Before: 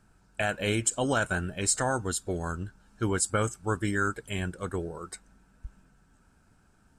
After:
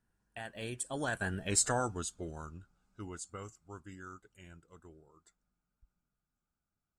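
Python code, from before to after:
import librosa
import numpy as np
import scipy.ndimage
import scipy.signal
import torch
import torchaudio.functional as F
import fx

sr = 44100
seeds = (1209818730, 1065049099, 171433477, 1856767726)

y = fx.doppler_pass(x, sr, speed_mps=27, closest_m=7.7, pass_at_s=1.56)
y = F.gain(torch.from_numpy(y), -2.5).numpy()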